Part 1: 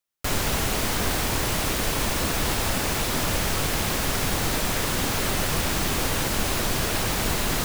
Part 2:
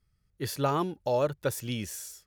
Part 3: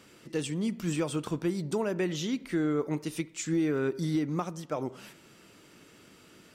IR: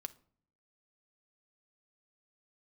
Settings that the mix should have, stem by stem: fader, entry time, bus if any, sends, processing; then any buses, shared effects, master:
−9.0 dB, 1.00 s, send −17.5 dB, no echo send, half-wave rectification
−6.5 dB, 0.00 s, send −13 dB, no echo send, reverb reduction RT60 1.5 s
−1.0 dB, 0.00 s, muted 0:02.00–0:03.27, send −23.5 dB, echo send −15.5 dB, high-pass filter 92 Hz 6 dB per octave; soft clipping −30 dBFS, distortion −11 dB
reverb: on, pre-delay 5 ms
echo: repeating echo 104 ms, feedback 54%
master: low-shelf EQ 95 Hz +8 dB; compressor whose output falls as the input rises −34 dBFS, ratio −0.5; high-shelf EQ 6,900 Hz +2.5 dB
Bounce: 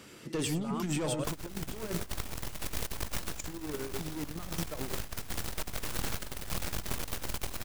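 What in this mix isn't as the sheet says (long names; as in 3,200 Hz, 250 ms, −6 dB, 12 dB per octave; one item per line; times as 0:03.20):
stem 1: send −17.5 dB → −23.5 dB
stem 2 −6.5 dB → −14.0 dB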